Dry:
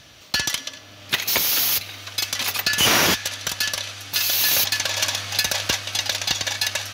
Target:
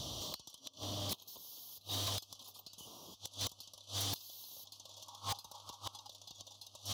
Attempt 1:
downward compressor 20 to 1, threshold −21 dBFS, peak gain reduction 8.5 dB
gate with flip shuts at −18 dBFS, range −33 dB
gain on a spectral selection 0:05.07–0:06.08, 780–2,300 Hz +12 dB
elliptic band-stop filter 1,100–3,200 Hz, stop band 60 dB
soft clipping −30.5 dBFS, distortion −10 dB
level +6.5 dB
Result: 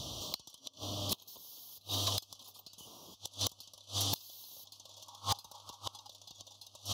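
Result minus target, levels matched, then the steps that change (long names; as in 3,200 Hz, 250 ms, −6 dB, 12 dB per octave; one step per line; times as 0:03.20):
soft clipping: distortion −6 dB
change: soft clipping −40.5 dBFS, distortion −4 dB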